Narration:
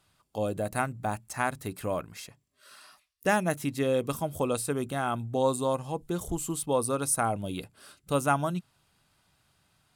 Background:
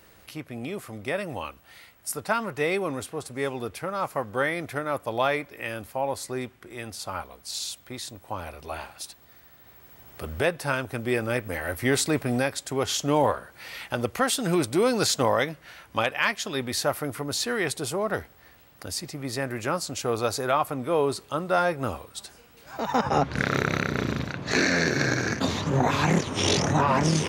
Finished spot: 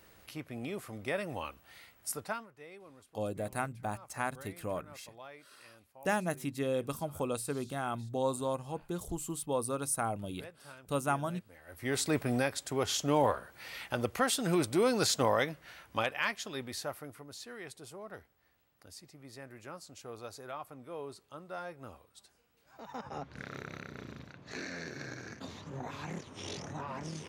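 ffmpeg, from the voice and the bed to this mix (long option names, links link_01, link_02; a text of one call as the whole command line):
ffmpeg -i stem1.wav -i stem2.wav -filter_complex "[0:a]adelay=2800,volume=-6dB[link_01];[1:a]volume=14.5dB,afade=type=out:start_time=2.11:duration=0.37:silence=0.1,afade=type=in:start_time=11.66:duration=0.47:silence=0.1,afade=type=out:start_time=15.71:duration=1.56:silence=0.211349[link_02];[link_01][link_02]amix=inputs=2:normalize=0" out.wav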